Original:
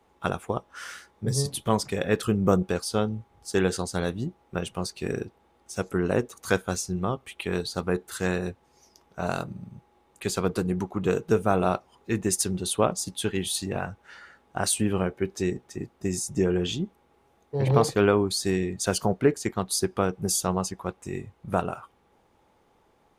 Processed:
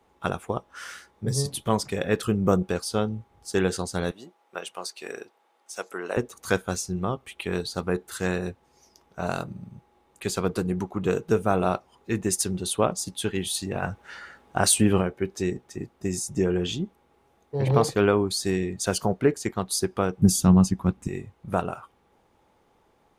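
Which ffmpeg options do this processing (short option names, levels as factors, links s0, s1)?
-filter_complex "[0:a]asettb=1/sr,asplit=3[s0][s1][s2];[s0]atrim=end=4.114[s3];[s1]atrim=start=4.11:end=6.17,asetpts=PTS-STARTPTS,afade=t=in:d=0.004:c=qsin,afade=t=out:st=2.056:d=0.004:c=qsin,highpass=570[s4];[s2]atrim=start=6.166[s5];[s3][s4]acrossfade=d=0.004:c1=hsin:c2=qsin[s6];[s6][s5]acrossfade=d=0.004:c1=qsin:c2=hsin,asplit=3[s7][s8][s9];[s7]afade=t=out:st=13.82:d=0.02[s10];[s8]acontrast=34,afade=t=in:st=13.82:d=0.02,afade=t=out:st=15:d=0.02[s11];[s9]afade=t=in:st=15:d=0.02[s12];[s10][s11][s12]amix=inputs=3:normalize=0,asettb=1/sr,asplit=3[s13][s14][s15];[s13]atrim=end=20.224[s16];[s14]atrim=start=20.22:end=21.08,asetpts=PTS-STARTPTS,afade=t=in:d=0.004:c=qsin,afade=t=out:st=0.856:d=0.004:c=qsin,lowshelf=f=330:t=q:w=1.5:g=11[s17];[s15]atrim=start=21.076[s18];[s16][s17]acrossfade=d=0.004:c1=hsin:c2=qsin[s19];[s19][s18]acrossfade=d=0.004:c1=qsin:c2=hsin"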